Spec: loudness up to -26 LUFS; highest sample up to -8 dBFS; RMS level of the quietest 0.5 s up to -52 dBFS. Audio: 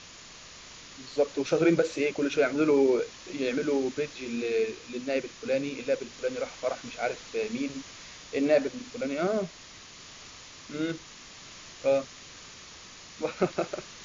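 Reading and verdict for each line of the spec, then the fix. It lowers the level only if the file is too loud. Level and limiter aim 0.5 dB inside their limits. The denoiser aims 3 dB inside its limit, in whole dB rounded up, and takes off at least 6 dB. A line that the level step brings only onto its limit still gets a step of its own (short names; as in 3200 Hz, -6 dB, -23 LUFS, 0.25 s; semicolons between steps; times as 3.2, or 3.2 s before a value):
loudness -29.0 LUFS: OK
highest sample -11.5 dBFS: OK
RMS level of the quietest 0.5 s -48 dBFS: fail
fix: denoiser 7 dB, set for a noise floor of -48 dBFS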